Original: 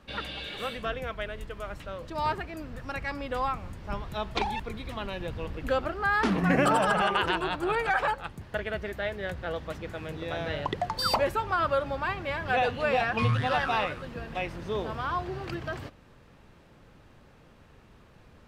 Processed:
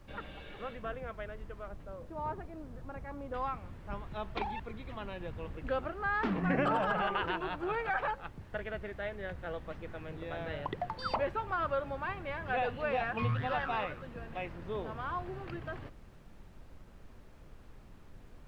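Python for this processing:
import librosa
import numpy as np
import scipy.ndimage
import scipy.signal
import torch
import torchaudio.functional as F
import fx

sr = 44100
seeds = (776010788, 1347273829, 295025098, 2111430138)

y = fx.lowpass(x, sr, hz=fx.steps((0.0, 1800.0), (1.68, 1000.0), (3.34, 2800.0)), slope=12)
y = fx.dmg_noise_colour(y, sr, seeds[0], colour='brown', level_db=-45.0)
y = y * 10.0 ** (-6.5 / 20.0)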